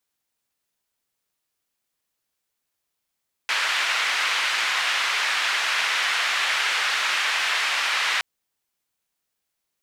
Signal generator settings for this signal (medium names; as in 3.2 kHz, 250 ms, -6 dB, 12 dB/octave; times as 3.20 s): noise band 1.5–2.3 kHz, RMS -23.5 dBFS 4.72 s